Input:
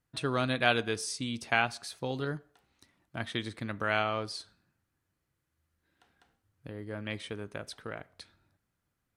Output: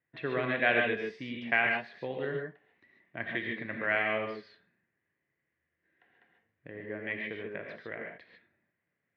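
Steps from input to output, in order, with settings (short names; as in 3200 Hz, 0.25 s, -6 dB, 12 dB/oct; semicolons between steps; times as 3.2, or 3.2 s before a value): speaker cabinet 190–2500 Hz, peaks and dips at 200 Hz -4 dB, 280 Hz -4 dB, 870 Hz -7 dB, 1300 Hz -10 dB, 1900 Hz +10 dB; non-linear reverb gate 0.17 s rising, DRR 1 dB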